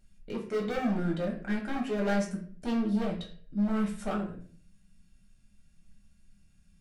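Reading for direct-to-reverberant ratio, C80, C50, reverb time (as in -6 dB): -2.5 dB, 12.0 dB, 8.0 dB, 0.50 s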